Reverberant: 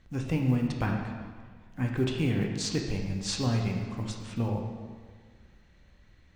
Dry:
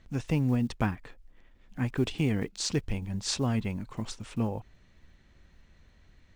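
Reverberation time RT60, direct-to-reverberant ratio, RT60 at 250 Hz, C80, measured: 1.7 s, 0.5 dB, 1.8 s, 5.5 dB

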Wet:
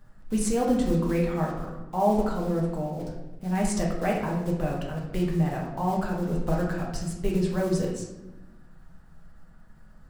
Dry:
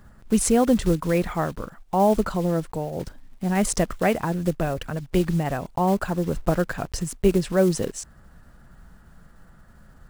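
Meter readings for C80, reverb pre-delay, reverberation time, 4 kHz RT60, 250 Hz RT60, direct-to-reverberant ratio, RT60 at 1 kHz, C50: 6.5 dB, 4 ms, 1.0 s, 0.65 s, 1.5 s, -2.5 dB, 1.0 s, 3.5 dB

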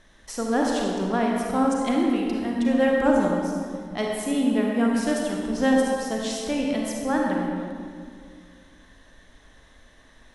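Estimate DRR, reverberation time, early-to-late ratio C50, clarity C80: -1.5 dB, 2.1 s, -0.5 dB, 1.0 dB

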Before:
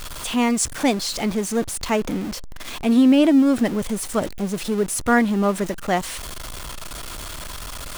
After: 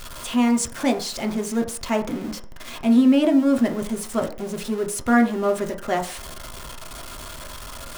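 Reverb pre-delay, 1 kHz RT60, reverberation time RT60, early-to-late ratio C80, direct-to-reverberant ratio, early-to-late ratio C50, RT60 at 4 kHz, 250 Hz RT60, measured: 3 ms, 0.50 s, 0.50 s, 16.0 dB, 3.0 dB, 12.5 dB, 0.45 s, 0.45 s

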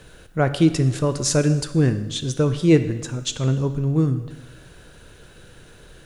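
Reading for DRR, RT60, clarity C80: 10.0 dB, 1.2 s, 13.5 dB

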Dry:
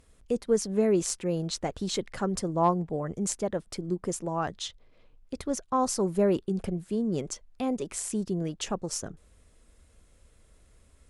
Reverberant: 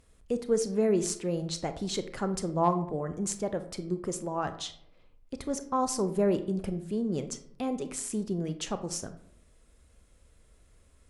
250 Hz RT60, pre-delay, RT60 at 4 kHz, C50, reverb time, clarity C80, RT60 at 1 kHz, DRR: 0.85 s, 26 ms, 0.40 s, 12.0 dB, 0.70 s, 16.0 dB, 0.65 s, 9.5 dB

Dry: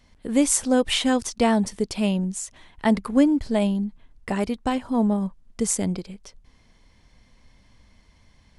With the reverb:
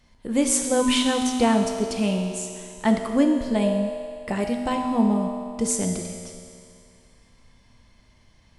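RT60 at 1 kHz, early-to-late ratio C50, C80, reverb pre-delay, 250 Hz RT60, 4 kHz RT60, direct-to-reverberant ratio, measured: 2.3 s, 4.0 dB, 5.0 dB, 3 ms, 2.3 s, 2.3 s, 2.0 dB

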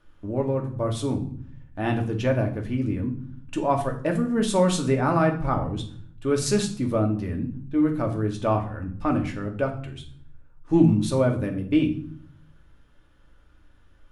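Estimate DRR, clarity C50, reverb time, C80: 2.0 dB, 10.5 dB, 0.55 s, 14.5 dB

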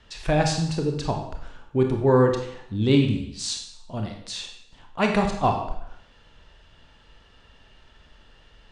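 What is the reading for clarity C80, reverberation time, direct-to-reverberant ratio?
9.0 dB, 0.70 s, 3.0 dB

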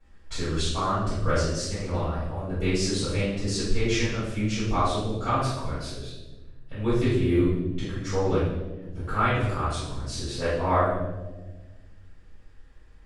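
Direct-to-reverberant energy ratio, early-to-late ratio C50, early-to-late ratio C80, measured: -15.0 dB, -0.5 dB, 3.5 dB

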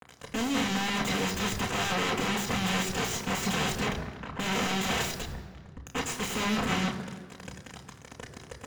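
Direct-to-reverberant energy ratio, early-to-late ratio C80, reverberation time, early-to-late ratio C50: 1.5 dB, 11.0 dB, 1.7 s, 10.0 dB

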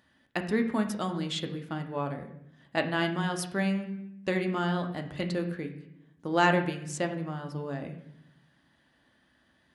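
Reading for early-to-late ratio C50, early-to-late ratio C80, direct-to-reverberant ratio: 9.5 dB, 12.0 dB, 4.5 dB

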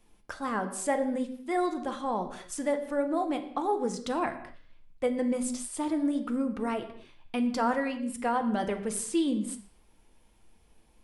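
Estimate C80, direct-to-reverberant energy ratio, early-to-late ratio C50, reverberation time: 13.0 dB, 6.0 dB, 11.0 dB, no single decay rate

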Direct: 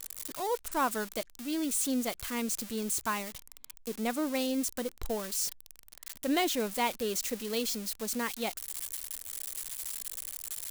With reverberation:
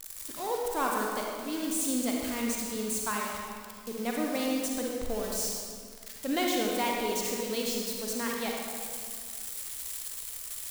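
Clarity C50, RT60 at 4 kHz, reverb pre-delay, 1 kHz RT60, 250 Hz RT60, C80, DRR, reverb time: -0.5 dB, 1.5 s, 37 ms, 2.1 s, 2.2 s, 1.0 dB, -1.5 dB, 2.1 s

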